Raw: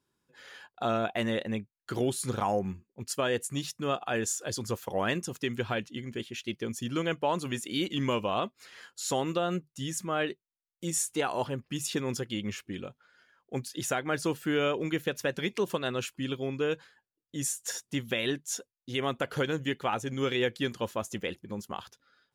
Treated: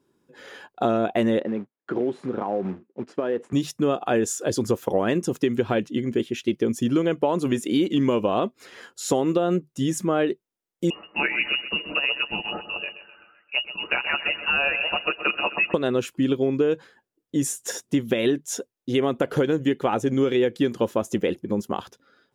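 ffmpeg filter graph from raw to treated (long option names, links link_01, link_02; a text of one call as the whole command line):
ffmpeg -i in.wav -filter_complex "[0:a]asettb=1/sr,asplit=3[link_01][link_02][link_03];[link_01]atrim=end=1.394[link_04];[link_02]atrim=start=1.39:end=3.53,asetpts=PTS-STARTPTS,afade=type=in:duration=0.004:curve=qsin,afade=type=out:start_time=2.136:duration=0.004:curve=qsin,acompressor=threshold=-33dB:ratio=8:attack=3.2:release=140:knee=1:detection=peak,acrusher=bits=3:mode=log:mix=0:aa=0.000001,highpass=200,lowpass=2000[link_05];[link_03]atrim=start=3.526[link_06];[link_04][link_05]acrossfade=duration=0.004:curve1=hsin:curve2=qsin[link_07];[link_07][link_06]acrossfade=duration=0.004:curve1=qsin:curve2=hsin,asettb=1/sr,asplit=3[link_08][link_09][link_10];[link_08]atrim=end=10.904[link_11];[link_09]atrim=start=10.9:end=15.74,asetpts=PTS-STARTPTS,afade=type=in:duration=0.004:curve=qsin,afade=type=out:start_time=4.836:duration=0.004:curve=qsin,aecho=1:1:7.5:0.71,atrim=end_sample=213444,aecho=1:1:128|256|384|512|640:0.224|0.103|0.0474|0.0218|0.01,atrim=end_sample=213444,lowpass=frequency=2600:width_type=q:width=0.5098,lowpass=frequency=2600:width_type=q:width=0.6013,lowpass=frequency=2600:width_type=q:width=0.9,lowpass=frequency=2600:width_type=q:width=2.563,afreqshift=-3000[link_12];[link_10]atrim=start=15.736[link_13];[link_11][link_12]acrossfade=duration=0.004:curve1=hsin:curve2=qsin[link_14];[link_14][link_13]acrossfade=duration=0.004:curve1=qsin:curve2=hsin,equalizer=frequency=340:width=0.54:gain=12.5,bandreject=frequency=4400:width=19,acompressor=threshold=-21dB:ratio=6,volume=3.5dB" out.wav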